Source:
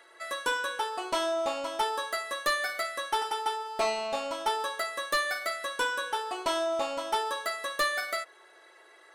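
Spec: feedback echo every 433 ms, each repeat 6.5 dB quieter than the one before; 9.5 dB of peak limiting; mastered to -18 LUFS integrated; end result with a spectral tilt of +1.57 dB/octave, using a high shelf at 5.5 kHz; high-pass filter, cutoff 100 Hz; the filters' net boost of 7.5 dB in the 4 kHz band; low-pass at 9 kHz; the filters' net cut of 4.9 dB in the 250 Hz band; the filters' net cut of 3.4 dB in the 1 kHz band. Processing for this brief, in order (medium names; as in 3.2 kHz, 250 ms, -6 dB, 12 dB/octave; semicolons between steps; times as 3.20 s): high-pass 100 Hz; low-pass 9 kHz; peaking EQ 250 Hz -7 dB; peaking EQ 1 kHz -4.5 dB; peaking EQ 4 kHz +6.5 dB; treble shelf 5.5 kHz +7.5 dB; peak limiter -23 dBFS; feedback delay 433 ms, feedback 47%, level -6.5 dB; trim +12.5 dB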